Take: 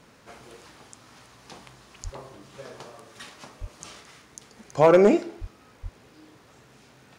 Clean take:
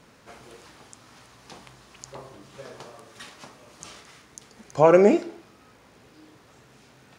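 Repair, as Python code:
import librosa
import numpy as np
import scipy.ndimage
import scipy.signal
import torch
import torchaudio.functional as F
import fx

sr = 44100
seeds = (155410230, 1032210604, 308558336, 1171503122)

y = fx.fix_declip(x, sr, threshold_db=-8.5)
y = fx.fix_deplosive(y, sr, at_s=(2.03, 3.6, 5.4, 5.82))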